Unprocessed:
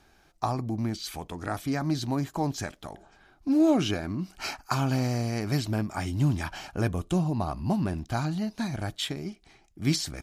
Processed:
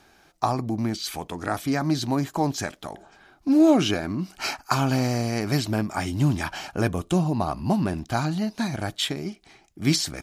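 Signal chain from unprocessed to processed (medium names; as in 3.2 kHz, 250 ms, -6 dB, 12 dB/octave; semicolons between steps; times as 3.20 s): bass shelf 82 Hz -12 dB; trim +5.5 dB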